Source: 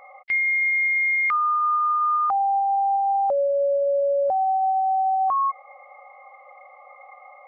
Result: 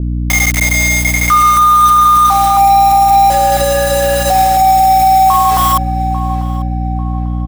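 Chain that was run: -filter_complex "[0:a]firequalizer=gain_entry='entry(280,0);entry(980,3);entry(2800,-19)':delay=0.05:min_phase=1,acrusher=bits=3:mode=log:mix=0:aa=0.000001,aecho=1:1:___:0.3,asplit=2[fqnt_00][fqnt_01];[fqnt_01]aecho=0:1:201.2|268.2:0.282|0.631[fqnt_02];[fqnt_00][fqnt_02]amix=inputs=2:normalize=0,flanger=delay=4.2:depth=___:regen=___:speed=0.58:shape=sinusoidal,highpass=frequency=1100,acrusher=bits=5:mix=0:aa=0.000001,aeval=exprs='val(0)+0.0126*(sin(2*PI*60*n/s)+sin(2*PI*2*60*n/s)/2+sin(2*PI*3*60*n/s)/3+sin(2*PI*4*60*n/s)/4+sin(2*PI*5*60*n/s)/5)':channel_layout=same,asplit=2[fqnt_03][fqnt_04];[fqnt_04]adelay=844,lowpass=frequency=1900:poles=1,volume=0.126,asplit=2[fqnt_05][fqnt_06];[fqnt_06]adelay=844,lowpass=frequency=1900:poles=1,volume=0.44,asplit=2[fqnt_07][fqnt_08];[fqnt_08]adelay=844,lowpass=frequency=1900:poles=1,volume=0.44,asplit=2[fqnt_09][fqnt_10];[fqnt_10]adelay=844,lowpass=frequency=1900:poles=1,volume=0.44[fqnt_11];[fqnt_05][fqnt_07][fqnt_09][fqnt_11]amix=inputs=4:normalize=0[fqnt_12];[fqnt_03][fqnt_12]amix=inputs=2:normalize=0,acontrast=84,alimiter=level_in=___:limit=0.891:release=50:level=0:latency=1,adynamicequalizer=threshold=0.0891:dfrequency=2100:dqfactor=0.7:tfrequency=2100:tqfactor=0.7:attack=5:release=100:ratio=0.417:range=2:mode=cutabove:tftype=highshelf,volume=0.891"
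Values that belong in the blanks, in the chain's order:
4.1, 3.9, -81, 7.5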